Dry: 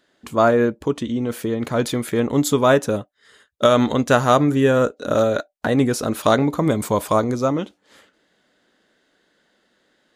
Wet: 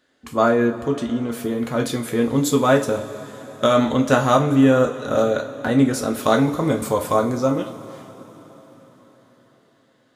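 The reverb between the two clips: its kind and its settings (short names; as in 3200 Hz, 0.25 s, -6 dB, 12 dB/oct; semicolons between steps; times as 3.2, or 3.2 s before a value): two-slope reverb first 0.27 s, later 4.9 s, from -21 dB, DRR 2 dB; gain -3 dB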